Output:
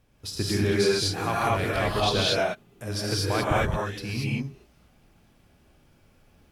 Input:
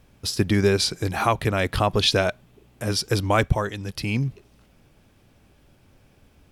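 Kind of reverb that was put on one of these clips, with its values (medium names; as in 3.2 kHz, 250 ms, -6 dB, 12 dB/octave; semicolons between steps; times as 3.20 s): gated-style reverb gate 260 ms rising, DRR -6 dB; trim -9 dB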